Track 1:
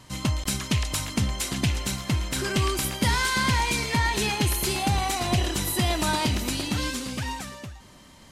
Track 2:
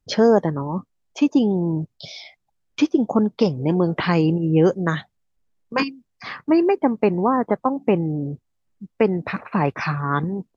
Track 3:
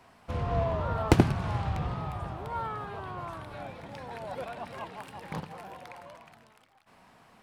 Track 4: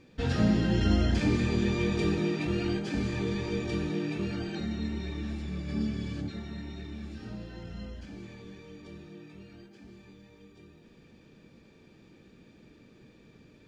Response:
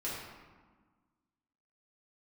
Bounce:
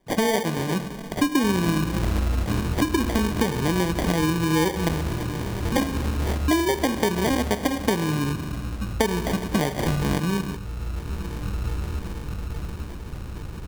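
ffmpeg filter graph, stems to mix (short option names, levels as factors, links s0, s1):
-filter_complex "[0:a]adelay=1950,volume=0.15[s0];[1:a]volume=1.12,asplit=2[s1][s2];[s2]volume=0.251[s3];[2:a]highpass=f=840:w=0.5412,highpass=f=840:w=1.3066,volume=0.501[s4];[3:a]asubboost=boost=9:cutoff=78,adelay=1250,volume=0.841,asplit=2[s5][s6];[s6]volume=0.668[s7];[4:a]atrim=start_sample=2205[s8];[s3][s8]afir=irnorm=-1:irlink=0[s9];[s7]aecho=0:1:849|1698|2547|3396|4245|5094|5943|6792:1|0.54|0.292|0.157|0.085|0.0459|0.0248|0.0134[s10];[s0][s1][s4][s5][s9][s10]amix=inputs=6:normalize=0,dynaudnorm=f=130:g=11:m=6.31,acrusher=samples=33:mix=1:aa=0.000001,acompressor=threshold=0.1:ratio=4"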